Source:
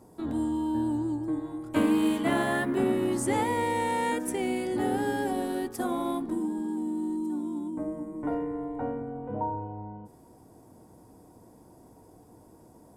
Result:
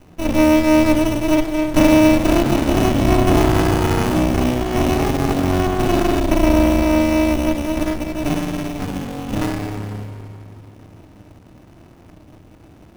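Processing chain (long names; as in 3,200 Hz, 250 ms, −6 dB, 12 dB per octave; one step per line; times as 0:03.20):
treble cut that deepens with the level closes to 1,300 Hz, closed at −24 dBFS
dynamic equaliser 380 Hz, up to +7 dB, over −41 dBFS, Q 0.82
in parallel at −0.5 dB: brickwall limiter −19 dBFS, peak gain reduction 9.5 dB
on the sum: decimation without filtering 15×
flutter between parallel walls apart 6 metres, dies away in 0.24 s
on a send at −4 dB: convolution reverb RT60 2.8 s, pre-delay 3 ms
on the sum: windowed peak hold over 65 samples
level +3 dB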